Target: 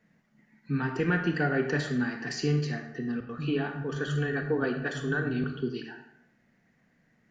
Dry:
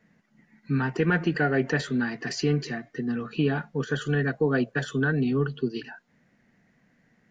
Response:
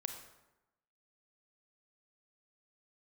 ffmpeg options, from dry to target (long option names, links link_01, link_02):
-filter_complex "[0:a]asettb=1/sr,asplit=3[link_01][link_02][link_03];[link_01]atrim=end=3.204[link_04];[link_02]atrim=start=3.2:end=5.44,asetpts=PTS-STARTPTS,afade=type=in:duration=0.004:curve=qsin,afade=type=out:start_time=2.236:duration=0.004:curve=qsin,acrossover=split=180[link_05][link_06];[link_06]adelay=90[link_07];[link_05][link_07]amix=inputs=2:normalize=0,atrim=end_sample=98784[link_08];[link_03]atrim=start=5.436[link_09];[link_04][link_08]acrossfade=duration=0.004:curve1=hsin:curve2=qsin[link_10];[link_10][link_09]acrossfade=duration=0.004:curve1=qsin:curve2=hsin[link_11];[1:a]atrim=start_sample=2205,asetrate=52920,aresample=44100[link_12];[link_11][link_12]afir=irnorm=-1:irlink=0"